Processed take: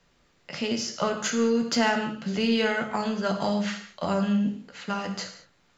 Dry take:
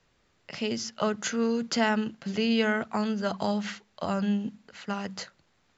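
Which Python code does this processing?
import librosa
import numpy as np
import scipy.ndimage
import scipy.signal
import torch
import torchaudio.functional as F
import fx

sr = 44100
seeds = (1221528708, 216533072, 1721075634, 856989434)

p1 = fx.rev_gated(x, sr, seeds[0], gate_ms=240, shape='falling', drr_db=4.0)
p2 = 10.0 ** (-26.5 / 20.0) * np.tanh(p1 / 10.0 ** (-26.5 / 20.0))
y = p1 + (p2 * 10.0 ** (-10.0 / 20.0))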